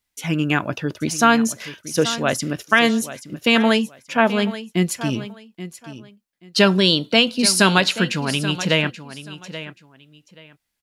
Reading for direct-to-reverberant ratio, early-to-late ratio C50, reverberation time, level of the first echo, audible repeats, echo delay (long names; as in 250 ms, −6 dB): no reverb audible, no reverb audible, no reverb audible, −14.0 dB, 2, 830 ms